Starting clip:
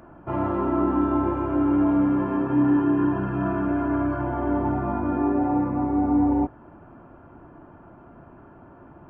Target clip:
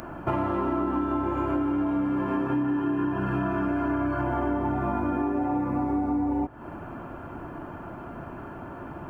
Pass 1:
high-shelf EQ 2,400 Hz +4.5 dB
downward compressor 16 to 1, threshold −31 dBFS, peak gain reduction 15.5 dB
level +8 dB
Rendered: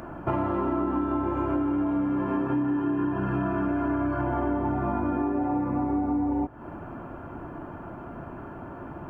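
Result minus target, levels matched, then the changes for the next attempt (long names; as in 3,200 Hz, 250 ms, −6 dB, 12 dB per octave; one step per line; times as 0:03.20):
4,000 Hz band −4.5 dB
change: high-shelf EQ 2,400 Hz +12 dB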